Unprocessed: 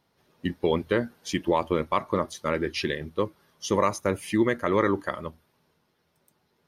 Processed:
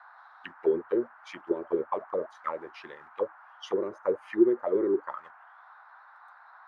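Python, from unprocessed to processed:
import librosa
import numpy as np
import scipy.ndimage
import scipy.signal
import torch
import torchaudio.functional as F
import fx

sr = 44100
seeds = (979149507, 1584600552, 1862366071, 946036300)

p1 = fx.peak_eq(x, sr, hz=820.0, db=-2.5, octaves=0.87)
p2 = fx.quant_dither(p1, sr, seeds[0], bits=6, dither='none')
p3 = p1 + (p2 * librosa.db_to_amplitude(-12.0))
p4 = fx.auto_wah(p3, sr, base_hz=370.0, top_hz=3900.0, q=9.0, full_db=-18.0, direction='down')
p5 = fx.dmg_noise_band(p4, sr, seeds[1], low_hz=750.0, high_hz=1600.0, level_db=-58.0)
y = p5 * librosa.db_to_amplitude(5.0)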